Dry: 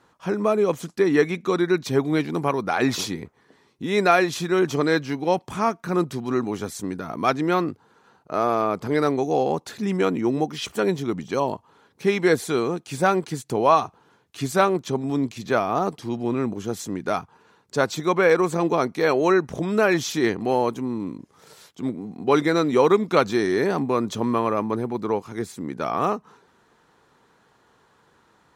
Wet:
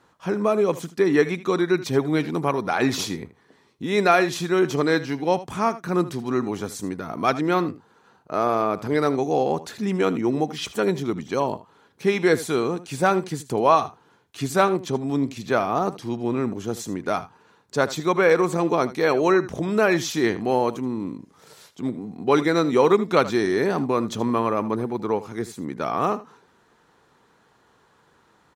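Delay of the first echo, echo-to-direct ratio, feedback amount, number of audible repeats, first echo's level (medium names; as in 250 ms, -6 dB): 78 ms, -16.0 dB, no regular repeats, 1, -16.0 dB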